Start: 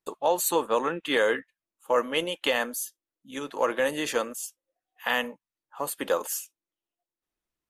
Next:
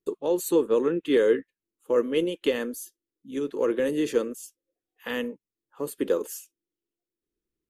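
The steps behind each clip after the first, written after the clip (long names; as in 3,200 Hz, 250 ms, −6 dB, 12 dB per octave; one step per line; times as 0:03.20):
low shelf with overshoot 540 Hz +9.5 dB, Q 3
level −6.5 dB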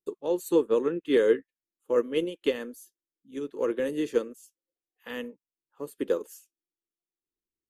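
expander for the loud parts 1.5 to 1, over −39 dBFS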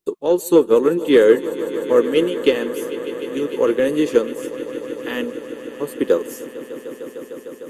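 in parallel at −6 dB: soft clipping −19.5 dBFS, distortion −14 dB
on the sum: echo that builds up and dies away 151 ms, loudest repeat 5, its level −17.5 dB
level +7.5 dB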